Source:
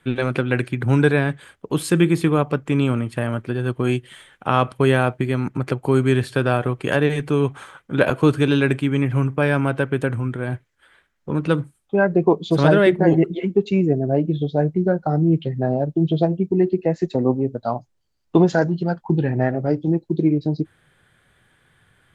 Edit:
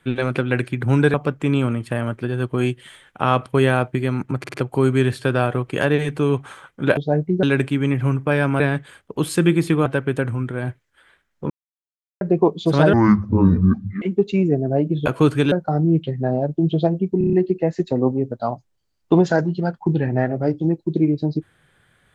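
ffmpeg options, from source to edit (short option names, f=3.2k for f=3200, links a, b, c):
-filter_complex "[0:a]asplit=20[a][b][c][d][e][f][g][h][i][j][k][l][m][n][o][p][q][r][s][t];[a]atrim=end=1.142[u];[b]atrim=start=2.398:end=5.702[v];[c]atrim=start=5.648:end=5.702[w];[d]atrim=start=5.648:end=5.702[x];[e]atrim=start=5.648:end=8.082[y];[f]atrim=start=14.438:end=14.902[z];[g]atrim=start=8.538:end=9.712[aa];[h]atrim=start=1.138:end=2.402[ab];[i]atrim=start=9.708:end=11.35,asetpts=PTS-STARTPTS,afade=t=out:st=1.638:d=0.004:c=hsin[ac];[j]atrim=start=11.35:end=12.06,asetpts=PTS-STARTPTS,volume=0[ad];[k]atrim=start=12.06:end=12.784,asetpts=PTS-STARTPTS,afade=t=in:d=0.004:c=hsin[ae];[l]atrim=start=12.78:end=13.4,asetpts=PTS-STARTPTS,asetrate=25137,aresample=44100,atrim=end_sample=47968,asetpts=PTS-STARTPTS[af];[m]atrim=start=13.396:end=14.442[ag];[n]atrim=start=8.078:end=8.542[ah];[o]atrim=start=14.898:end=16.592[ai];[p]atrim=start=16.558:end=16.592[aj];[q]atrim=start=16.558:end=16.592[ak];[r]atrim=start=16.558:end=16.592[al];[s]atrim=start=16.558:end=16.592[am];[t]atrim=start=16.558[an];[u][v]acrossfade=d=0.004:c1=hsin:c2=hsin[ao];[ao][w]acrossfade=d=0.004:c1=hsin:c2=hsin[ap];[ap][x]acrossfade=d=0.004:c1=hsin:c2=hsin[aq];[aq][y]acrossfade=d=0.004:c1=hsin:c2=hsin[ar];[ar][z]acrossfade=d=0.004:c1=hsin:c2=hsin[as];[as][aa]acrossfade=d=0.004:c1=hsin:c2=hsin[at];[at][ab]acrossfade=d=0.004:c1=hsin:c2=hsin[au];[ac][ad][ae]concat=n=3:v=0:a=1[av];[au][av]acrossfade=d=0.004:c1=hsin:c2=hsin[aw];[aw][af]acrossfade=d=0.004:c1=hsin:c2=hsin[ax];[ax][ag]acrossfade=d=0.004:c1=hsin:c2=hsin[ay];[ay][ah]acrossfade=d=0.004:c1=hsin:c2=hsin[az];[az][ai]acrossfade=d=0.004:c1=hsin:c2=hsin[ba];[ba][aj]acrossfade=d=0.004:c1=hsin:c2=hsin[bb];[bb][ak]acrossfade=d=0.004:c1=hsin:c2=hsin[bc];[bc][al]acrossfade=d=0.004:c1=hsin:c2=hsin[bd];[bd][am]acrossfade=d=0.004:c1=hsin:c2=hsin[be];[be][an]acrossfade=d=0.004:c1=hsin:c2=hsin"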